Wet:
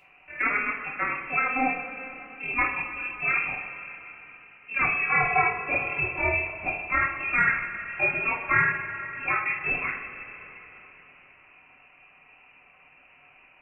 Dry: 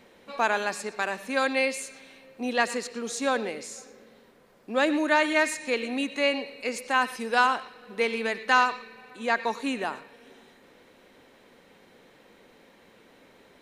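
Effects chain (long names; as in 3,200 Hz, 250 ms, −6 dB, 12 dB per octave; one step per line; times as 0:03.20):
amplitude modulation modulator 39 Hz, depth 55%
voice inversion scrambler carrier 2,900 Hz
coupled-rooms reverb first 0.31 s, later 4 s, from −18 dB, DRR −5 dB
level −2.5 dB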